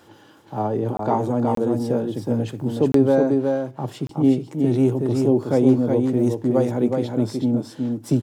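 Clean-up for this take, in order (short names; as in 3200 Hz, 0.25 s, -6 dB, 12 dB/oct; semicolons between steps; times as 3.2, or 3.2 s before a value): interpolate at 0.97/1.55/2.92/4.07, 23 ms; inverse comb 0.369 s -4 dB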